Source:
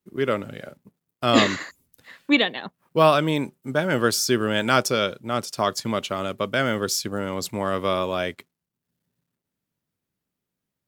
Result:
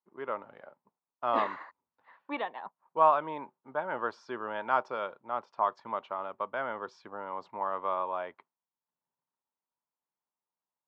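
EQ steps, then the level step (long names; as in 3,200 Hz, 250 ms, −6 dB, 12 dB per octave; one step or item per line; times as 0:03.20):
resonant band-pass 940 Hz, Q 4.2
high-frequency loss of the air 190 metres
+2.5 dB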